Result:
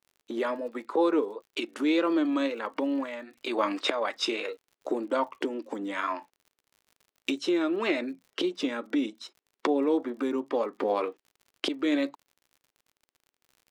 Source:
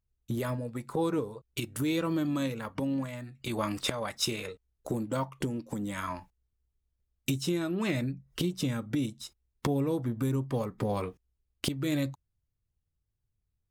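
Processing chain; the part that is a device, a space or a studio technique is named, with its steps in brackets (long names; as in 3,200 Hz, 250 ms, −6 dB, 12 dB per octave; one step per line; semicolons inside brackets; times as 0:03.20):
Butterworth high-pass 280 Hz 36 dB per octave
lo-fi chain (low-pass filter 3,600 Hz 12 dB per octave; tape wow and flutter; surface crackle 56 per second −53 dBFS)
level +6 dB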